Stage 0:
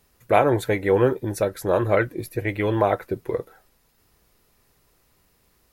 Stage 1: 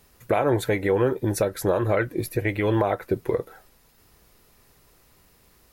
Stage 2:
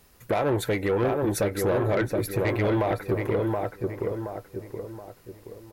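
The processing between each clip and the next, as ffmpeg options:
-filter_complex "[0:a]asplit=2[a][b];[b]acompressor=threshold=-28dB:ratio=6,volume=-2dB[c];[a][c]amix=inputs=2:normalize=0,alimiter=limit=-12dB:level=0:latency=1:release=190"
-filter_complex "[0:a]asplit=2[a][b];[b]adelay=724,lowpass=f=1.8k:p=1,volume=-4dB,asplit=2[c][d];[d]adelay=724,lowpass=f=1.8k:p=1,volume=0.43,asplit=2[e][f];[f]adelay=724,lowpass=f=1.8k:p=1,volume=0.43,asplit=2[g][h];[h]adelay=724,lowpass=f=1.8k:p=1,volume=0.43,asplit=2[i][j];[j]adelay=724,lowpass=f=1.8k:p=1,volume=0.43[k];[a][c][e][g][i][k]amix=inputs=6:normalize=0,asoftclip=type=tanh:threshold=-18dB"

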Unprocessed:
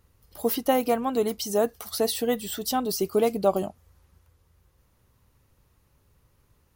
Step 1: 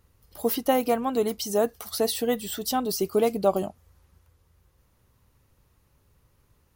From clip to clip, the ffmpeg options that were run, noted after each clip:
-af anull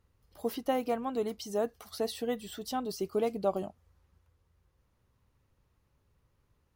-af "highshelf=f=7.6k:g=-11,volume=-7.5dB"

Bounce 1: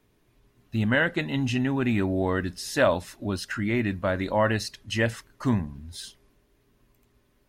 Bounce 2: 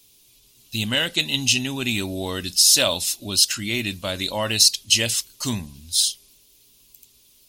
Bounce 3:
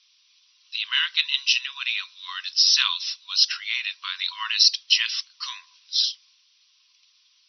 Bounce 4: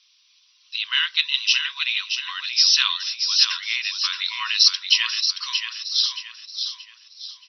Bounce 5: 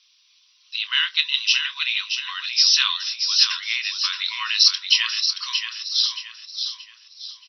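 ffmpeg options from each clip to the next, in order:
-af "aexciter=amount=8.8:drive=8.3:freq=2.7k,volume=-3dB"
-af "afftfilt=real='re*between(b*sr/4096,970,6000)':imag='im*between(b*sr/4096,970,6000)':win_size=4096:overlap=0.75"
-af "aecho=1:1:626|1252|1878|2504:0.447|0.156|0.0547|0.0192,volume=1.5dB"
-filter_complex "[0:a]asplit=2[a][b];[b]adelay=27,volume=-12.5dB[c];[a][c]amix=inputs=2:normalize=0"

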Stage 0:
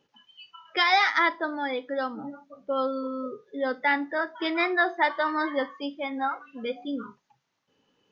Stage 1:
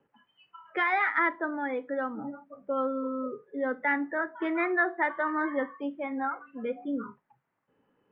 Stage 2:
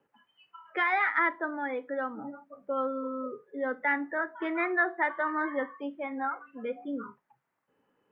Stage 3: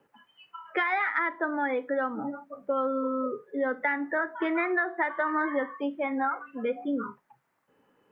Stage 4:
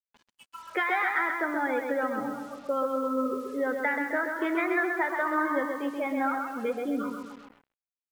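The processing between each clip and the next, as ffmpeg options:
-filter_complex "[0:a]lowpass=f=2k:w=0.5412,lowpass=f=2k:w=1.3066,acrossover=split=150|570|1100[a][b][c][d];[c]acompressor=threshold=-41dB:ratio=6[e];[a][b][e][d]amix=inputs=4:normalize=0"
-af "lowshelf=f=280:g=-6.5"
-af "acompressor=threshold=-30dB:ratio=10,volume=6.5dB"
-af "aecho=1:1:130|260|390|520|650|780:0.562|0.276|0.135|0.0662|0.0324|0.0159,acrusher=bits=7:mix=0:aa=0.5,volume=-1dB"

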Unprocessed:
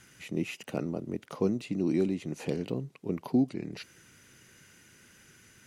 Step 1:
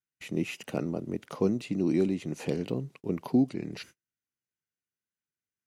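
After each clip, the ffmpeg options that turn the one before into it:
-af "agate=range=-43dB:threshold=-50dB:ratio=16:detection=peak,volume=1.5dB"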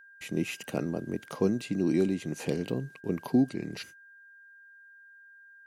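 -af "aeval=exprs='val(0)+0.00251*sin(2*PI*1600*n/s)':c=same,highshelf=f=6.1k:g=6.5"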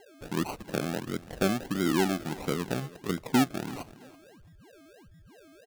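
-af "acrusher=samples=36:mix=1:aa=0.000001:lfo=1:lforange=21.6:lforate=1.5,aecho=1:1:333|666:0.112|0.0281"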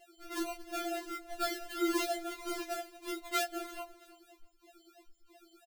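-filter_complex "[0:a]asplit=2[a][b];[b]adelay=13,volume=-4dB[c];[a][c]amix=inputs=2:normalize=0,afftfilt=real='re*4*eq(mod(b,16),0)':imag='im*4*eq(mod(b,16),0)':win_size=2048:overlap=0.75,volume=-2dB"

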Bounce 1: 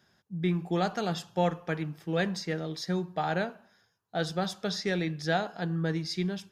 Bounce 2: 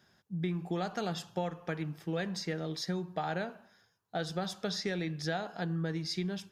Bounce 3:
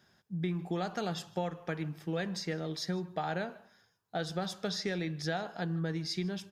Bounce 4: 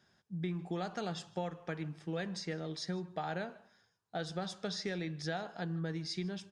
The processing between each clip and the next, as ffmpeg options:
-af "acompressor=threshold=-31dB:ratio=4"
-af "aecho=1:1:153:0.0631"
-af "aresample=22050,aresample=44100,volume=-3.5dB"

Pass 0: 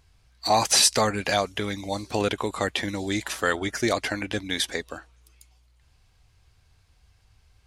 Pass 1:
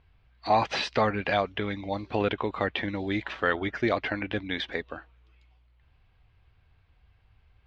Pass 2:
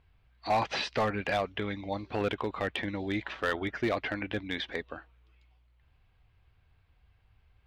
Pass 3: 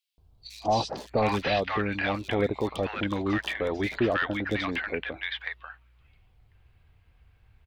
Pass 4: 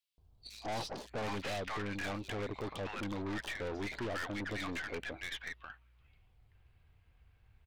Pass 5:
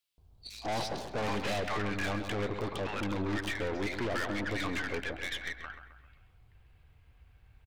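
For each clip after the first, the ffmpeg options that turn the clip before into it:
-af "lowpass=f=3.2k:w=0.5412,lowpass=f=3.2k:w=1.3066,volume=-1.5dB"
-af "volume=18.5dB,asoftclip=hard,volume=-18.5dB,volume=-3dB"
-filter_complex "[0:a]acrossover=split=940|4000[a][b][c];[a]adelay=180[d];[b]adelay=720[e];[d][e][c]amix=inputs=3:normalize=0,volume=5.5dB"
-af "aeval=exprs='(tanh(39.8*val(0)+0.5)-tanh(0.5))/39.8':c=same,volume=-3.5dB"
-filter_complex "[0:a]asplit=2[a][b];[b]adelay=132,lowpass=f=2.6k:p=1,volume=-8dB,asplit=2[c][d];[d]adelay=132,lowpass=f=2.6k:p=1,volume=0.52,asplit=2[e][f];[f]adelay=132,lowpass=f=2.6k:p=1,volume=0.52,asplit=2[g][h];[h]adelay=132,lowpass=f=2.6k:p=1,volume=0.52,asplit=2[i][j];[j]adelay=132,lowpass=f=2.6k:p=1,volume=0.52,asplit=2[k][l];[l]adelay=132,lowpass=f=2.6k:p=1,volume=0.52[m];[a][c][e][g][i][k][m]amix=inputs=7:normalize=0,volume=4.5dB"

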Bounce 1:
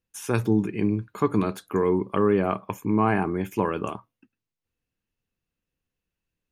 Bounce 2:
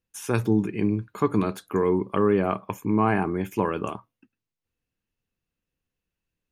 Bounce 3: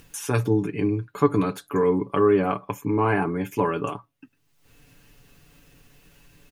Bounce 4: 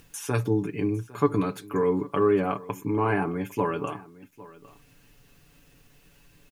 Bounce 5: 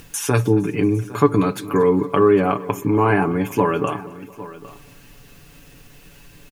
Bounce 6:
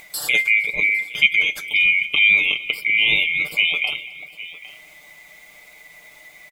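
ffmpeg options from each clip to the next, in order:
-af anull
-af "aecho=1:1:7:0.67,acompressor=mode=upward:threshold=-30dB:ratio=2.5"
-af "aecho=1:1:805:0.1,acrusher=bits=10:mix=0:aa=0.000001,volume=-3dB"
-filter_complex "[0:a]asplit=2[a][b];[b]acompressor=threshold=-31dB:ratio=6,volume=-0.5dB[c];[a][c]amix=inputs=2:normalize=0,aecho=1:1:230|460|690|920:0.0891|0.0499|0.0279|0.0157,volume=5.5dB"
-af "afftfilt=real='real(if(lt(b,920),b+92*(1-2*mod(floor(b/92),2)),b),0)':imag='imag(if(lt(b,920),b+92*(1-2*mod(floor(b/92),2)),b),0)':win_size=2048:overlap=0.75,volume=-1dB"

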